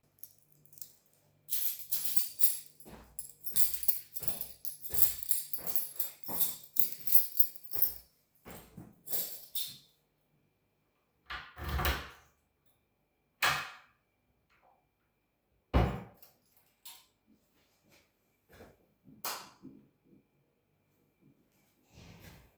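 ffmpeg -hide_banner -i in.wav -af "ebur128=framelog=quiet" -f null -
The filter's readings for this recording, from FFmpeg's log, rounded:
Integrated loudness:
  I:         -29.7 LUFS
  Threshold: -42.5 LUFS
Loudness range:
  LRA:        20.0 LU
  Threshold: -53.1 LUFS
  LRA low:   -48.4 LUFS
  LRA high:  -28.4 LUFS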